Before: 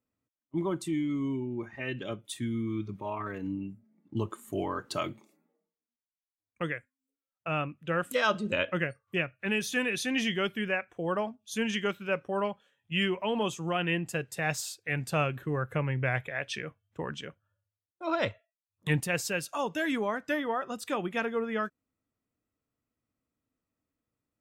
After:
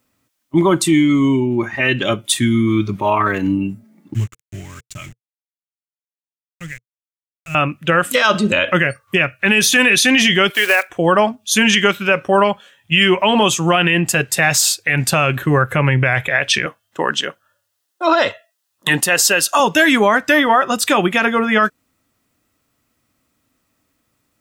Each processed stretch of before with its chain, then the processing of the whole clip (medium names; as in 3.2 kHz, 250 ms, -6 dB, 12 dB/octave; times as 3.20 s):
4.14–7.55 s: small samples zeroed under -38 dBFS + FFT filter 120 Hz 0 dB, 330 Hz -20 dB, 1 kHz -25 dB, 2.2 kHz -10 dB, 4.5 kHz -22 dB, 7.1 kHz -6 dB, 10 kHz -17 dB + upward expansion, over -44 dBFS
10.50–10.90 s: block-companded coder 5-bit + high-pass 370 Hz 24 dB/octave
16.66–19.60 s: high-pass 280 Hz + band-stop 2.3 kHz, Q 6.1
whole clip: tilt shelf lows -3.5 dB, about 850 Hz; band-stop 460 Hz, Q 12; loudness maximiser +22.5 dB; trim -2.5 dB